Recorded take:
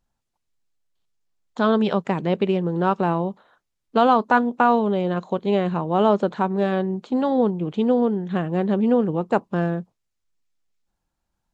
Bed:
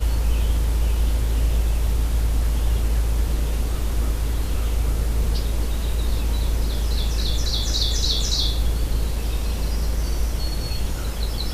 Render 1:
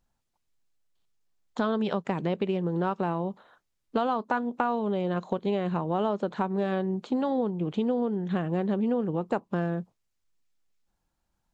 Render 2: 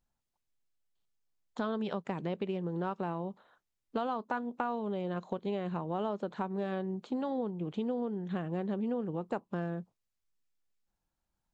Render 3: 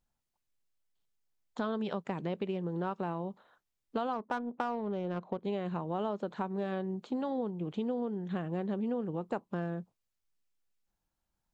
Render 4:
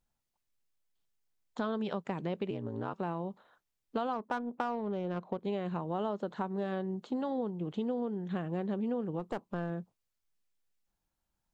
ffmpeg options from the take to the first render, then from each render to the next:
-af "acompressor=threshold=0.0562:ratio=4"
-af "volume=0.447"
-filter_complex "[0:a]asplit=3[s0][s1][s2];[s0]afade=t=out:st=4.12:d=0.02[s3];[s1]adynamicsmooth=sensitivity=6.5:basefreq=1600,afade=t=in:st=4.12:d=0.02,afade=t=out:st=5.43:d=0.02[s4];[s2]afade=t=in:st=5.43:d=0.02[s5];[s3][s4][s5]amix=inputs=3:normalize=0"
-filter_complex "[0:a]asettb=1/sr,asplit=3[s0][s1][s2];[s0]atrim=end=2.504[s3];[s1]atrim=start=2.5:end=2.94,asetpts=PTS-STARTPTS,afade=t=in:d=0.004:c=qsin,afade=t=out:st=0.436:d=0.004:c=qsin,aeval=exprs='val(0)*sin(2*PI*56*n/s)':c=same[s4];[s2]atrim=start=2.936[s5];[s3][s4]acrossfade=d=0.004:c1=hsin:c2=qsin[s6];[s6][s5]acrossfade=d=0.004:c1=qsin:c2=hsin,asettb=1/sr,asplit=3[s7][s8][s9];[s7]atrim=end=5.804[s10];[s8]atrim=start=5.8:end=7.88,asetpts=PTS-STARTPTS,afade=t=in:d=0.004:c=qsin,afade=t=out:st=2.076:d=0.004:c=qsin,bandreject=f=2400:w=12[s11];[s9]atrim=start=7.876[s12];[s10][s11]acrossfade=d=0.004:c1=hsin:c2=qsin[s13];[s13][s12]acrossfade=d=0.004:c1=qsin:c2=hsin,asettb=1/sr,asplit=3[s14][s15][s16];[s14]atrim=end=9.194[s17];[s15]atrim=start=9.19:end=9.7,asetpts=PTS-STARTPTS,afade=t=in:d=0.004:c=qsin,afade=t=out:st=0.506:d=0.004:c=qsin,aeval=exprs='clip(val(0),-1,0.0133)':c=same[s18];[s16]atrim=start=9.696[s19];[s17][s18]acrossfade=d=0.004:c1=hsin:c2=qsin[s20];[s20][s19]acrossfade=d=0.004:c1=qsin:c2=hsin"

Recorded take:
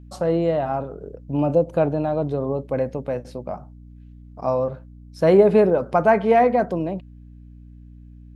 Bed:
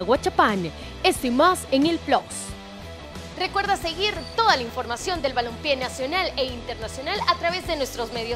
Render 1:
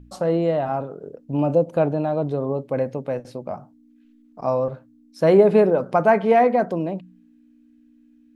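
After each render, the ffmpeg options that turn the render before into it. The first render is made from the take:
-af "bandreject=f=60:t=h:w=4,bandreject=f=120:t=h:w=4,bandreject=f=180:t=h:w=4"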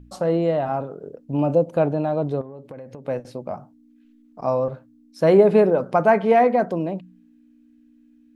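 -filter_complex "[0:a]asettb=1/sr,asplit=3[s0][s1][s2];[s0]atrim=end=2.414[s3];[s1]atrim=start=2.41:end=3.08,asetpts=PTS-STARTPTS,afade=t=in:d=0.004:c=qsin,afade=t=out:st=0.666:d=0.004:c=qsin,acompressor=threshold=0.0224:ratio=20:attack=3.2:release=140:knee=1:detection=peak[s4];[s2]atrim=start=3.076[s5];[s3][s4]acrossfade=d=0.004:c1=hsin:c2=qsin[s6];[s6][s5]acrossfade=d=0.004:c1=qsin:c2=hsin"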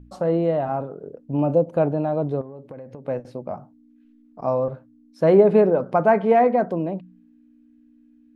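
-af "highshelf=f=2700:g=-10"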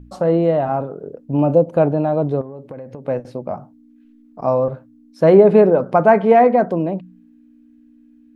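-af "volume=1.78,alimiter=limit=0.891:level=0:latency=1"

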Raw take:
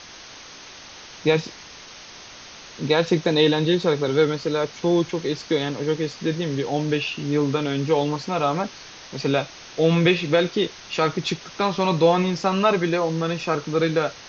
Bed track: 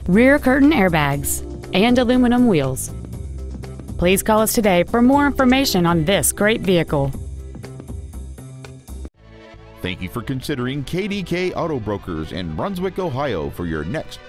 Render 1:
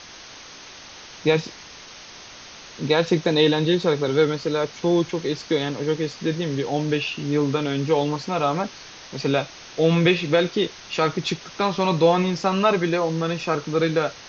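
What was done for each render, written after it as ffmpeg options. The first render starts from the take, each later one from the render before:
-af anull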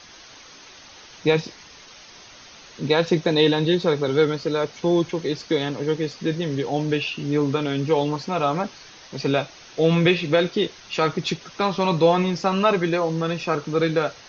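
-af "afftdn=nr=6:nf=-42"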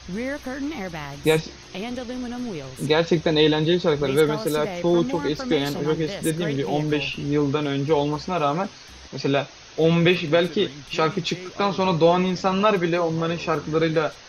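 -filter_complex "[1:a]volume=0.158[s0];[0:a][s0]amix=inputs=2:normalize=0"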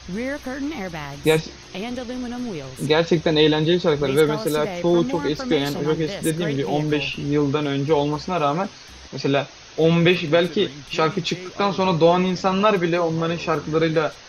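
-af "volume=1.19"

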